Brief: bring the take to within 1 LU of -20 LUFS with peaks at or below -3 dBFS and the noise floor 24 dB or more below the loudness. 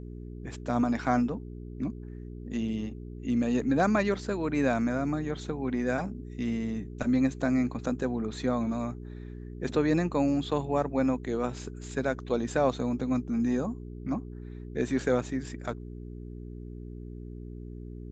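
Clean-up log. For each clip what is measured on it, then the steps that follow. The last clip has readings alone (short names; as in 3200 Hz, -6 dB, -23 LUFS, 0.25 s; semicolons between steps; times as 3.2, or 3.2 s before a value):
hum 60 Hz; harmonics up to 420 Hz; hum level -39 dBFS; loudness -30.0 LUFS; peak -12.5 dBFS; loudness target -20.0 LUFS
-> de-hum 60 Hz, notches 7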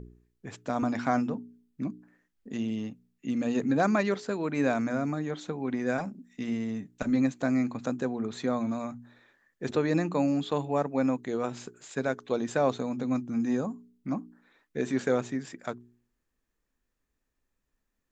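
hum none; loudness -30.5 LUFS; peak -12.5 dBFS; loudness target -20.0 LUFS
-> gain +10.5 dB; limiter -3 dBFS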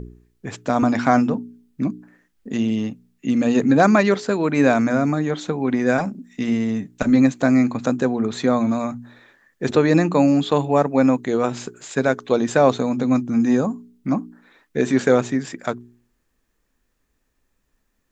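loudness -20.0 LUFS; peak -3.0 dBFS; noise floor -70 dBFS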